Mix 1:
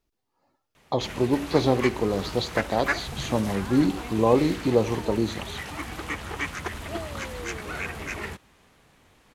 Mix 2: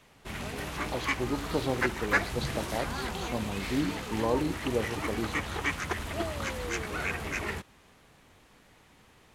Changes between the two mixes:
speech -9.0 dB; background: entry -0.75 s

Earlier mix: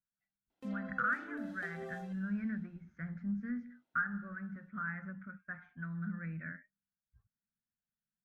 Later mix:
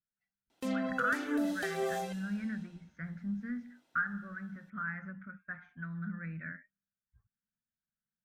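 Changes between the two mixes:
background +11.5 dB; master: add treble shelf 3.8 kHz +11.5 dB

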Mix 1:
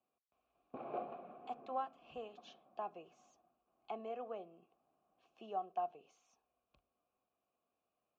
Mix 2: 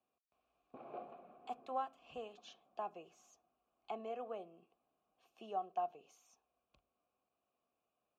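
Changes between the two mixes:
background -6.5 dB; master: remove distance through air 96 m

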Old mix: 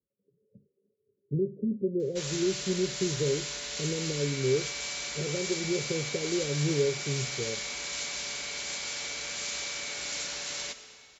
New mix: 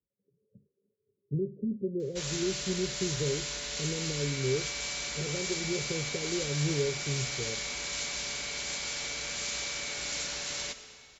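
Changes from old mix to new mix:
speech -5.0 dB; master: add bass shelf 150 Hz +8 dB

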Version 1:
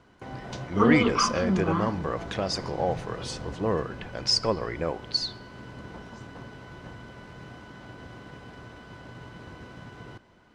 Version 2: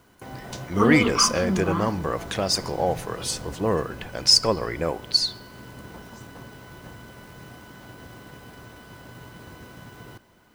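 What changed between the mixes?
speech +3.0 dB; master: remove distance through air 100 m

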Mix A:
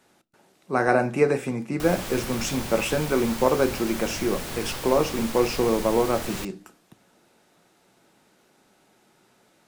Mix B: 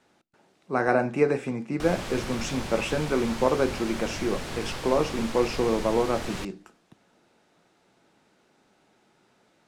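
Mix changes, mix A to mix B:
speech: send -8.5 dB; master: add distance through air 55 m

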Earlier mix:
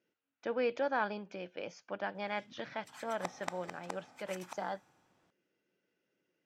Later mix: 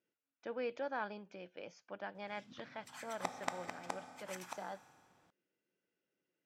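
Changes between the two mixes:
speech -7.0 dB; background: send +6.0 dB

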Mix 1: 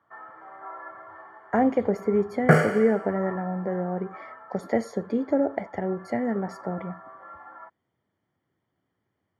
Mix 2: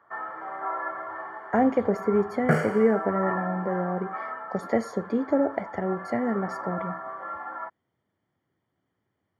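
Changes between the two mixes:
first sound +9.0 dB; second sound -5.5 dB

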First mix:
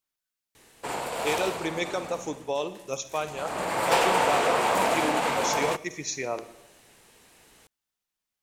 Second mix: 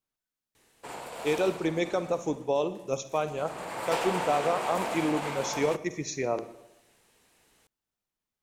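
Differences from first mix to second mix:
speech: add tilt shelf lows +5 dB; background -8.5 dB

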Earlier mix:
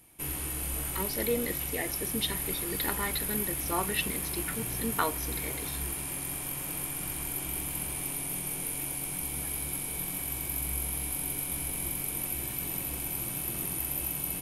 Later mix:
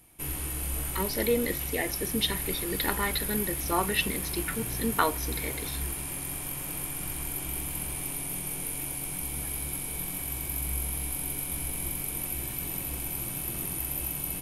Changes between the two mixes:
speech +4.0 dB; background: add bass shelf 64 Hz +7.5 dB

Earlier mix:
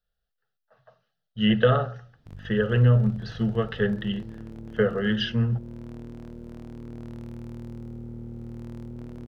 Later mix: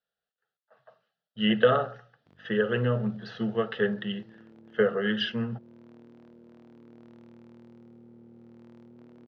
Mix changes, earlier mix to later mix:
background -8.5 dB; master: add band-pass 230–4300 Hz

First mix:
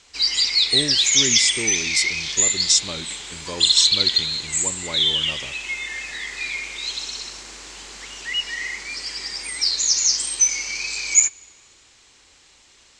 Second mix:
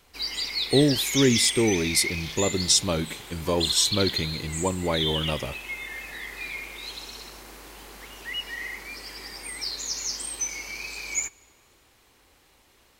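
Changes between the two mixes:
speech +8.5 dB; master: remove FFT filter 730 Hz 0 dB, 7.6 kHz +14 dB, 13 kHz -23 dB

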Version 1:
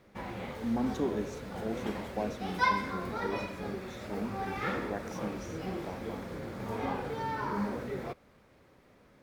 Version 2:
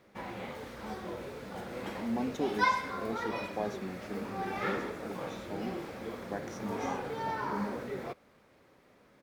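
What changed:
speech: entry +1.40 s; master: add bass shelf 120 Hz -10 dB

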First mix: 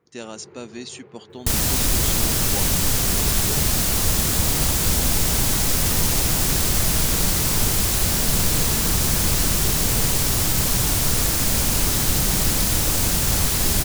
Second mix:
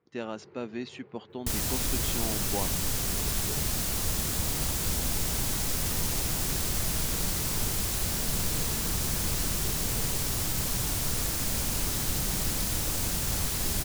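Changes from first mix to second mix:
speech: add low-pass 2.5 kHz 12 dB/octave; first sound -7.5 dB; second sound -9.5 dB

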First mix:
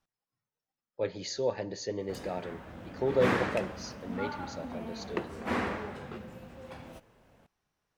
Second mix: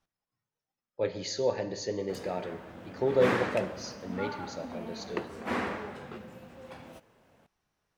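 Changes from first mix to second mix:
speech: send +11.0 dB; background: add high-pass 130 Hz 6 dB/octave

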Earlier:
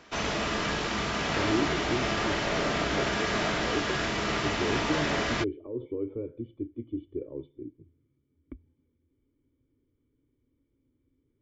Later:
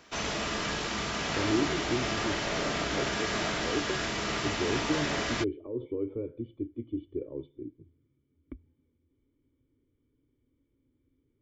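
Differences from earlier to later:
background -3.5 dB; master: add treble shelf 5.7 kHz +9 dB

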